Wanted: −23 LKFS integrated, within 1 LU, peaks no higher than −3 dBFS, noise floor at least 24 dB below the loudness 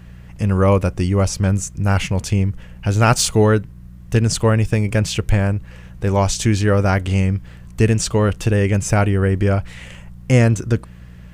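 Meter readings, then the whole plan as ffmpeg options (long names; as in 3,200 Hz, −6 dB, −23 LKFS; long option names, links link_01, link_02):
mains hum 60 Hz; hum harmonics up to 180 Hz; level of the hum −39 dBFS; integrated loudness −18.0 LKFS; sample peak −1.0 dBFS; target loudness −23.0 LKFS
→ -af "bandreject=frequency=60:width_type=h:width=4,bandreject=frequency=120:width_type=h:width=4,bandreject=frequency=180:width_type=h:width=4"
-af "volume=-5dB"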